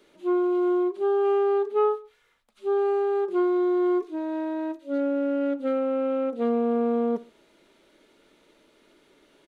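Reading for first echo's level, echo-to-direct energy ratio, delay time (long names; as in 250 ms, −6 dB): −21.0 dB, −20.0 dB, 68 ms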